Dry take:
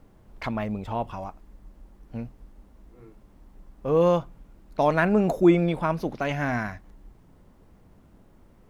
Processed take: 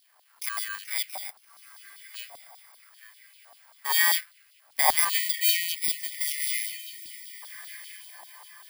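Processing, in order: FFT order left unsorted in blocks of 32 samples; bell 1100 Hz -5 dB 2 oct; diffused feedback echo 1.3 s, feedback 41%, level -15 dB; LFO high-pass saw up 0.87 Hz 630–2600 Hz; low shelf 420 Hz +5.5 dB; LFO high-pass saw down 5.1 Hz 760–4100 Hz; spectral delete 5.09–7.43, 370–1800 Hz

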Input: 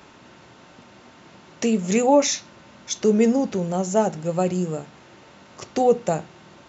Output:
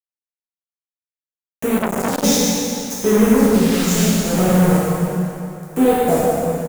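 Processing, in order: HPF 54 Hz 6 dB/oct; tone controls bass +5 dB, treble 0 dB; comb 4.5 ms, depth 37%; compressor 6:1, threshold -16 dBFS, peak gain reduction 7.5 dB; bit-crush 4-bit; phaser stages 2, 0.72 Hz, lowest notch 580–5000 Hz; plate-style reverb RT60 3 s, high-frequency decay 0.8×, DRR -8.5 dB; 1.78–2.24 core saturation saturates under 1400 Hz; gain -2 dB

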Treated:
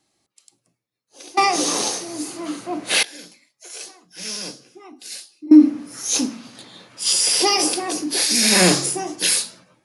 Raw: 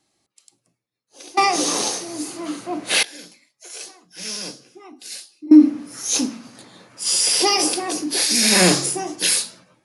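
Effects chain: 6.38–7.13 bell 3400 Hz +7.5 dB 0.83 oct

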